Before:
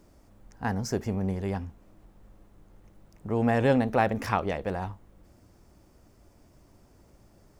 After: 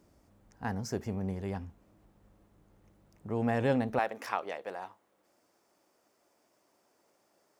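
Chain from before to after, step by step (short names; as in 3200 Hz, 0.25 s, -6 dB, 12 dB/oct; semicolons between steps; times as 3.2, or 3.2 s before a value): HPF 55 Hz 12 dB/oct, from 3.99 s 470 Hz; gain -5.5 dB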